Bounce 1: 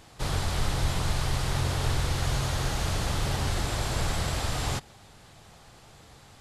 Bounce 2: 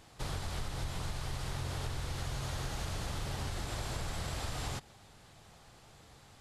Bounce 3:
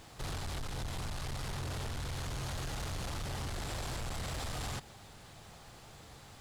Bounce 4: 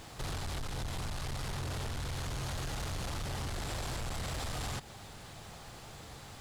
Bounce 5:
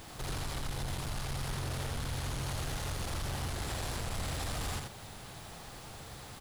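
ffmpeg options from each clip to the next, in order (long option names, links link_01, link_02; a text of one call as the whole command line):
ffmpeg -i in.wav -af "acompressor=threshold=-28dB:ratio=6,volume=-5.5dB" out.wav
ffmpeg -i in.wav -af "asoftclip=type=tanh:threshold=-39.5dB,acrusher=bits=11:mix=0:aa=0.000001,volume=4.5dB" out.wav
ffmpeg -i in.wav -af "acompressor=threshold=-46dB:ratio=1.5,volume=4.5dB" out.wav
ffmpeg -i in.wav -af "aexciter=amount=1.8:drive=3.2:freq=9700,asoftclip=type=hard:threshold=-35.5dB,aecho=1:1:82:0.631" out.wav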